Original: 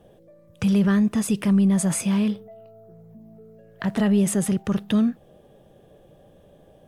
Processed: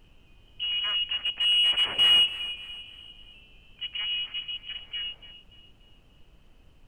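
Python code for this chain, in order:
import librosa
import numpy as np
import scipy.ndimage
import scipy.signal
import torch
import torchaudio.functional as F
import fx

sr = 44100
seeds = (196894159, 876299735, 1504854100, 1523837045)

p1 = fx.self_delay(x, sr, depth_ms=0.49)
p2 = fx.doppler_pass(p1, sr, speed_mps=13, closest_m=4.3, pass_at_s=2.23)
p3 = fx.env_lowpass(p2, sr, base_hz=500.0, full_db=-22.5)
p4 = fx.freq_invert(p3, sr, carrier_hz=3100)
p5 = fx.peak_eq(p4, sr, hz=1200.0, db=3.5, octaves=2.9)
p6 = np.clip(p5, -10.0 ** (-24.0 / 20.0), 10.0 ** (-24.0 / 20.0))
p7 = p5 + F.gain(torch.from_numpy(p6), -9.5).numpy()
p8 = fx.dmg_noise_colour(p7, sr, seeds[0], colour='brown', level_db=-53.0)
p9 = p8 + fx.echo_feedback(p8, sr, ms=290, feedback_pct=43, wet_db=-15, dry=0)
p10 = fx.spec_box(p9, sr, start_s=4.68, length_s=0.64, low_hz=430.0, high_hz=2400.0, gain_db=7)
y = F.gain(torch.from_numpy(p10), -1.0).numpy()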